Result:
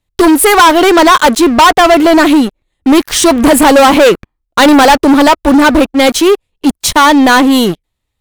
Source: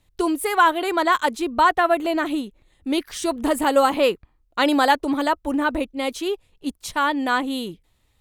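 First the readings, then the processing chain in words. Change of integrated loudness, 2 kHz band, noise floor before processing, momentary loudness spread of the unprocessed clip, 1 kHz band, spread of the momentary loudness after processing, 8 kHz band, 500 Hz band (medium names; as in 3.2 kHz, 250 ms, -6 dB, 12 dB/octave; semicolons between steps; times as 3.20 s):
+14.5 dB, +13.0 dB, -65 dBFS, 12 LU, +12.5 dB, 7 LU, +20.0 dB, +14.5 dB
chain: waveshaping leveller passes 5; trim +3 dB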